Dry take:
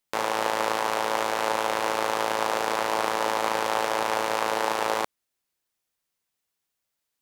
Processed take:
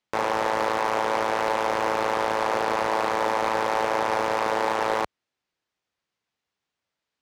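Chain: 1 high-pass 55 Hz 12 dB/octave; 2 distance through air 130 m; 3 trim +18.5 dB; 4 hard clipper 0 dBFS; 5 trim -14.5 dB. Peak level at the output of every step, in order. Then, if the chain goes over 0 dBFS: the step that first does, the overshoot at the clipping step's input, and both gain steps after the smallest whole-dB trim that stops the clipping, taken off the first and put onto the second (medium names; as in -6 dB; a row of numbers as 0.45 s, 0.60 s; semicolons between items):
-8.5 dBFS, -10.0 dBFS, +8.5 dBFS, 0.0 dBFS, -14.5 dBFS; step 3, 8.5 dB; step 3 +9.5 dB, step 5 -5.5 dB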